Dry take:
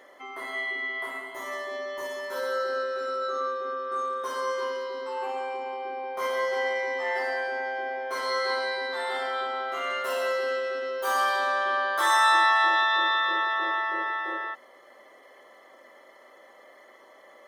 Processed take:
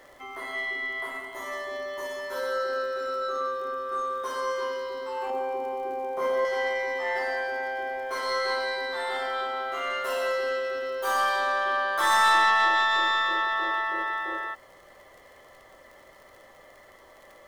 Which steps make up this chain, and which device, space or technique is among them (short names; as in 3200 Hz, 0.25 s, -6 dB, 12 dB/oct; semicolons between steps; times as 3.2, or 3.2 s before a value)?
5.3–6.45 tilt shelf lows +7.5 dB; record under a worn stylus (tracing distortion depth 0.027 ms; crackle 52/s -43 dBFS; pink noise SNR 35 dB)